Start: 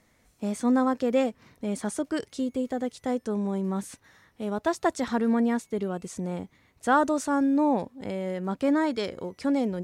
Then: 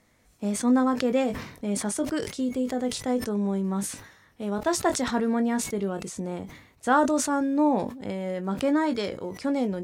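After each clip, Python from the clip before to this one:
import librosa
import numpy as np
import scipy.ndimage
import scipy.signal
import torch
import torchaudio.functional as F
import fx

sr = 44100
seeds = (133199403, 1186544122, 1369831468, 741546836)

y = fx.doubler(x, sr, ms=20.0, db=-10.0)
y = fx.sustainer(y, sr, db_per_s=83.0)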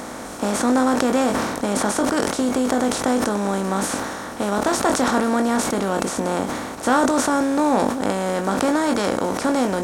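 y = fx.bin_compress(x, sr, power=0.4)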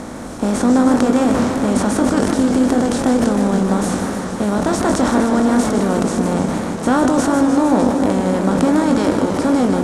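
y = scipy.signal.sosfilt(scipy.signal.butter(4, 12000.0, 'lowpass', fs=sr, output='sos'), x)
y = fx.low_shelf(y, sr, hz=330.0, db=12.0)
y = fx.echo_warbled(y, sr, ms=153, feedback_pct=80, rate_hz=2.8, cents=183, wet_db=-8.0)
y = y * 10.0 ** (-2.0 / 20.0)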